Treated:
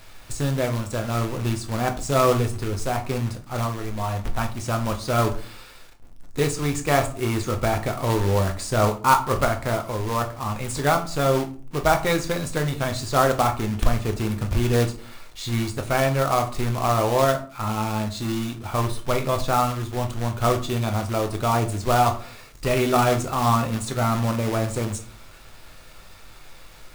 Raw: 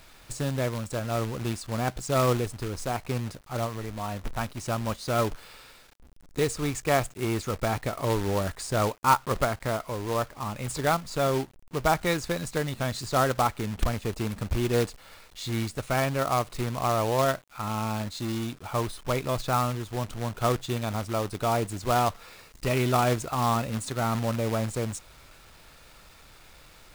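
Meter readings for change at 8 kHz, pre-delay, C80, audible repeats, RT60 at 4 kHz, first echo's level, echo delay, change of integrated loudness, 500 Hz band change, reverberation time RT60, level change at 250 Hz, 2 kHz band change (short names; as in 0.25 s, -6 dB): +4.0 dB, 8 ms, 18.0 dB, none, 0.30 s, none, none, +4.5 dB, +4.5 dB, 0.45 s, +4.5 dB, +4.5 dB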